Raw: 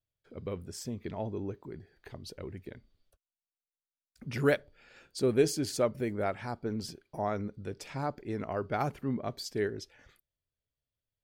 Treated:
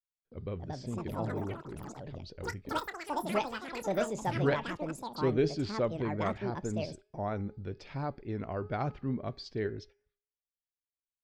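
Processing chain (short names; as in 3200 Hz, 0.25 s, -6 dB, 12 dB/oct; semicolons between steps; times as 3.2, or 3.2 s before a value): Chebyshev low-pass 4600 Hz, order 3; gate -52 dBFS, range -27 dB; low shelf 100 Hz +11.5 dB; de-hum 414 Hz, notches 6; vibrato 4.4 Hz 41 cents; resonator 380 Hz, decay 0.52 s, mix 30%; echoes that change speed 0.385 s, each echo +7 st, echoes 3; 2.32–4.53 doubler 27 ms -13.5 dB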